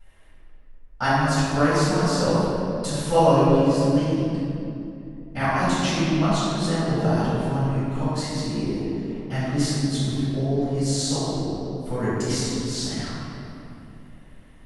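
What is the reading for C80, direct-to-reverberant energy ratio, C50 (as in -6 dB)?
-2.5 dB, -14.0 dB, -4.5 dB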